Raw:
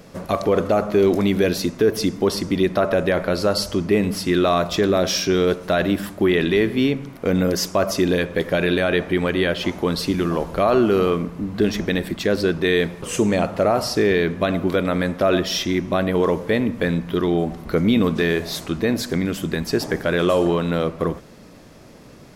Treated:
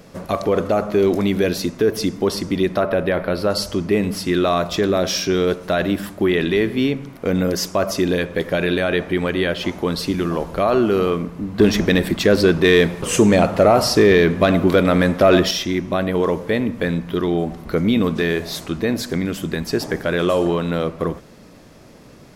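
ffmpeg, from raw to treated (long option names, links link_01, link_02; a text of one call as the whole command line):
ffmpeg -i in.wav -filter_complex "[0:a]asettb=1/sr,asplit=3[link_01][link_02][link_03];[link_01]atrim=end=2.834[link_04];[link_02]atrim=start=2.83:end=3.5,asetpts=PTS-STARTPTS,afade=type=in:duration=0.004:curve=qsin,afade=type=out:start_time=0.666:duration=0.004:curve=qsin,equalizer=frequency=7000:width_type=o:width=0.7:gain=-14[link_05];[link_03]atrim=start=3.496[link_06];[link_04][link_05]acrossfade=duration=0.004:curve1=hsin:curve2=qsin[link_07];[link_07][link_06]acrossfade=duration=0.004:curve1=qsin:curve2=hsin,asettb=1/sr,asplit=3[link_08][link_09][link_10];[link_08]atrim=end=11.594[link_11];[link_09]atrim=start=11.59:end=15.51,asetpts=PTS-STARTPTS,afade=type=in:duration=0.004:curve=qsin,afade=type=out:start_time=3.916:duration=0.004:curve=qsin,acontrast=57[link_12];[link_10]atrim=start=15.506[link_13];[link_11][link_12]acrossfade=duration=0.004:curve1=hsin:curve2=qsin[link_14];[link_14][link_13]acrossfade=duration=0.004:curve1=qsin:curve2=hsin" out.wav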